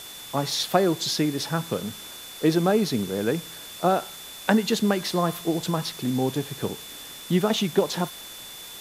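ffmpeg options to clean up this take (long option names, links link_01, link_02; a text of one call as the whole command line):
ffmpeg -i in.wav -af "adeclick=threshold=4,bandreject=frequency=3500:width=30,afwtdn=0.0089" out.wav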